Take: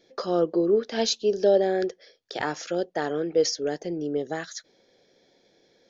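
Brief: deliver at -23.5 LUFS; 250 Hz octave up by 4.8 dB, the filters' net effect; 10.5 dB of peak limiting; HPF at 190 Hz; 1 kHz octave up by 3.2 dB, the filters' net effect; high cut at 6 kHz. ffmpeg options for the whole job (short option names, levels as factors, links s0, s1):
-af "highpass=190,lowpass=6000,equalizer=f=250:t=o:g=8.5,equalizer=f=1000:t=o:g=4,volume=1.58,alimiter=limit=0.2:level=0:latency=1"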